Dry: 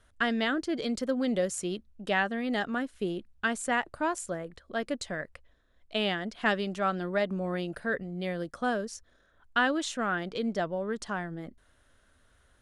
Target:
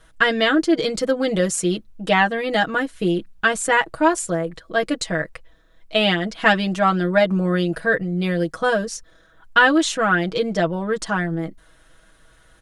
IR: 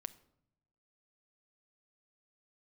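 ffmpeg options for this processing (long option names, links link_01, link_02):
-af "aecho=1:1:6.2:0.89,volume=9dB"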